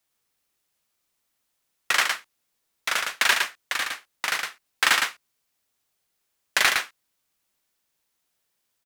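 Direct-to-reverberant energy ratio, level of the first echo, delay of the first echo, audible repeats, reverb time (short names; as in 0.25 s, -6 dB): none, -4.5 dB, 0.111 s, 1, none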